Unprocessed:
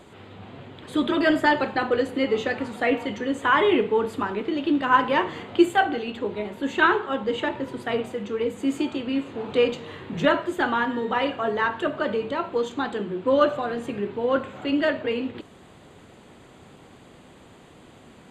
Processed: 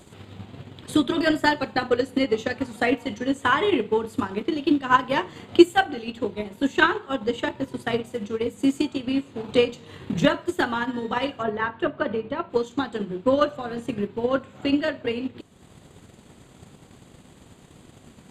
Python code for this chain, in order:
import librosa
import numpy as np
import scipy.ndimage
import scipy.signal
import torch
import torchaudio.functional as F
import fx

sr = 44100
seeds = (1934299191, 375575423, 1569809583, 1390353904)

y = fx.bass_treble(x, sr, bass_db=7, treble_db=fx.steps((0.0, 12.0), (11.42, -6.0), (12.49, 9.0)))
y = fx.transient(y, sr, attack_db=8, sustain_db=-6)
y = y * 10.0 ** (-4.5 / 20.0)